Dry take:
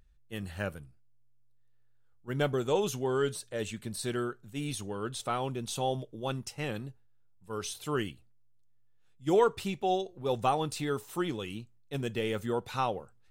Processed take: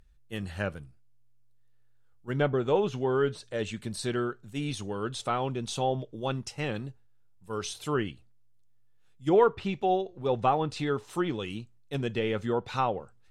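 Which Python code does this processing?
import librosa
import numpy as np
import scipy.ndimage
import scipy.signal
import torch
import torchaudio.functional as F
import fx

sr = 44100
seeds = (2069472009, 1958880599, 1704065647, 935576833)

y = fx.env_lowpass_down(x, sr, base_hz=2400.0, full_db=-26.0)
y = y * librosa.db_to_amplitude(3.0)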